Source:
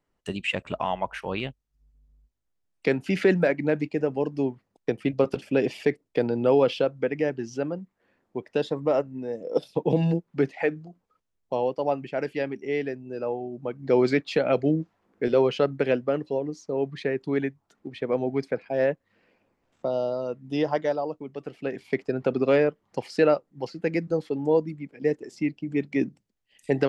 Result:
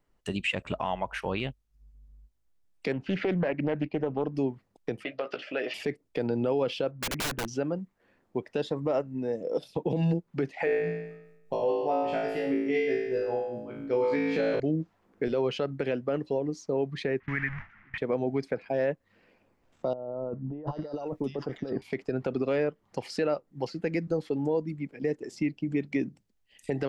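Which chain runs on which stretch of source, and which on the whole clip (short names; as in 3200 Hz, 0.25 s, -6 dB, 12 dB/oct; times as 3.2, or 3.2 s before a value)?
2.92–4.35 compressor 1.5:1, threshold -25 dBFS + air absorption 230 m + Doppler distortion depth 0.28 ms
5.04–5.74 compressor 3:1, threshold -27 dBFS + speaker cabinet 470–4800 Hz, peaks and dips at 610 Hz +8 dB, 900 Hz -7 dB, 1300 Hz +8 dB, 1900 Hz +7 dB, 2900 Hz +5 dB + doubler 16 ms -7 dB
6.91–7.48 LPF 2500 Hz 24 dB/oct + wrapped overs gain 27.5 dB
10.65–14.6 tremolo 4.8 Hz, depth 90% + flutter echo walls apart 3.1 m, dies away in 0.87 s
17.2–17.98 delta modulation 32 kbps, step -32.5 dBFS + EQ curve 160 Hz 0 dB, 440 Hz -19 dB, 2000 Hz +12 dB, 4200 Hz -25 dB + gate with hold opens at -27 dBFS, closes at -36 dBFS
19.93–21.82 negative-ratio compressor -36 dBFS + bands offset in time lows, highs 0.74 s, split 1400 Hz
whole clip: low shelf 60 Hz +8.5 dB; compressor 2:1, threshold -27 dBFS; limiter -20 dBFS; gain +1.5 dB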